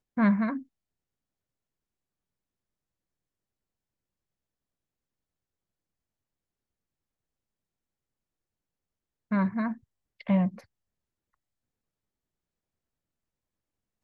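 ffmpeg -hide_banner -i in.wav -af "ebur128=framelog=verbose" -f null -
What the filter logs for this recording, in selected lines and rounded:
Integrated loudness:
  I:         -27.8 LUFS
  Threshold: -39.1 LUFS
Loudness range:
  LRA:         4.8 LU
  Threshold: -54.3 LUFS
  LRA low:   -37.5 LUFS
  LRA high:  -32.6 LUFS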